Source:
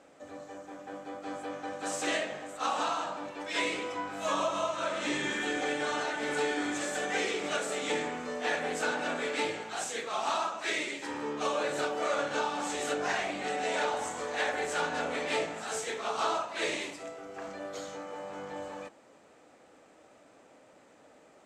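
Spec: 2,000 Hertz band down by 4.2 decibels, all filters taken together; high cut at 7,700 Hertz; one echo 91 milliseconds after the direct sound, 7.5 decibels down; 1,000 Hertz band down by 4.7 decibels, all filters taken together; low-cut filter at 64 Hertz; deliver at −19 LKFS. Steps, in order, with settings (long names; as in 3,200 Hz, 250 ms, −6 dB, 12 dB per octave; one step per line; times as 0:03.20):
high-pass filter 64 Hz
low-pass filter 7,700 Hz
parametric band 1,000 Hz −5.5 dB
parametric band 2,000 Hz −3.5 dB
single-tap delay 91 ms −7.5 dB
level +15.5 dB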